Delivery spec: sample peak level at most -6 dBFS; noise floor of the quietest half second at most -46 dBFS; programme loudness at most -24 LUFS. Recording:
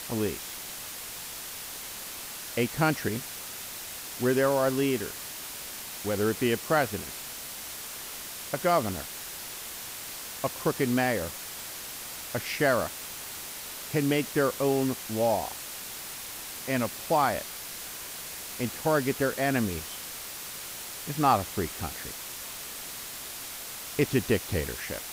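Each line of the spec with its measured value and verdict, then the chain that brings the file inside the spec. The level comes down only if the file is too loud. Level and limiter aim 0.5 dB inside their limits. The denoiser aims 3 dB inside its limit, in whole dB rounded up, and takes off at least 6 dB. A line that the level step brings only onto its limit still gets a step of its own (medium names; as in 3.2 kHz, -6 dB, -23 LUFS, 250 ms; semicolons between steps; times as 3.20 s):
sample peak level -10.5 dBFS: pass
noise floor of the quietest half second -40 dBFS: fail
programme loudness -30.5 LUFS: pass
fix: noise reduction 9 dB, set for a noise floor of -40 dBFS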